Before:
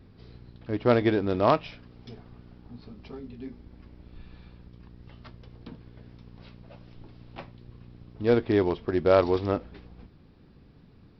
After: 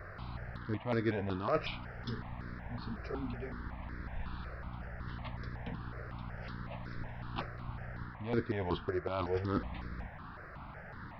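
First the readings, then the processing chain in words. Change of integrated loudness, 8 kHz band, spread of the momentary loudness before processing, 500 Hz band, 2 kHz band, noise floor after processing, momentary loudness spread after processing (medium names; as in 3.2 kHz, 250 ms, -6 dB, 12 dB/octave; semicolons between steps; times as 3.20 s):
-15.0 dB, no reading, 21 LU, -12.5 dB, -4.0 dB, -49 dBFS, 11 LU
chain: reverse; compression 20:1, threshold -31 dBFS, peak gain reduction 17.5 dB; reverse; band noise 510–1800 Hz -55 dBFS; stepped phaser 5.4 Hz 890–2900 Hz; trim +6 dB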